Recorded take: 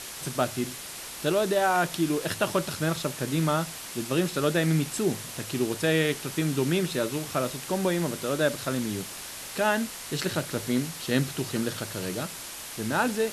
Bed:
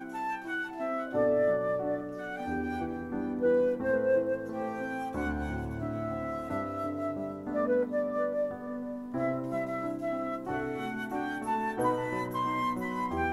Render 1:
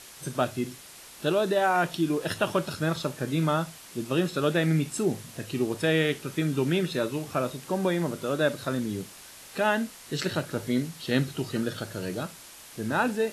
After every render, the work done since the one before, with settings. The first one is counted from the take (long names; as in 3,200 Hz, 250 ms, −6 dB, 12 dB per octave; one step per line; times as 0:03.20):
noise reduction from a noise print 8 dB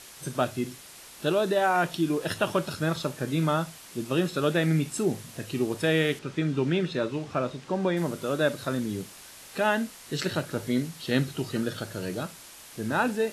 0:06.19–0:07.97: high-frequency loss of the air 90 metres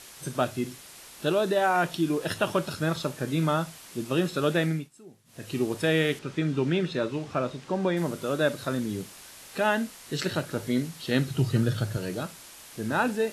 0:04.61–0:05.53: duck −23 dB, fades 0.28 s
0:11.30–0:11.97: parametric band 120 Hz +14.5 dB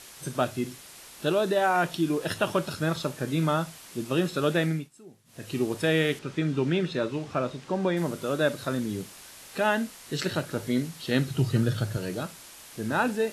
no processing that can be heard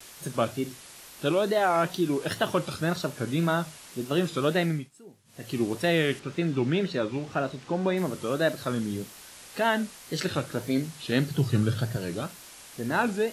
tape wow and flutter 130 cents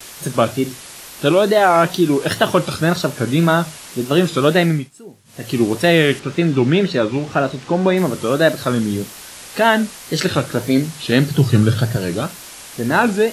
level +11 dB
brickwall limiter −1 dBFS, peak gain reduction 1.5 dB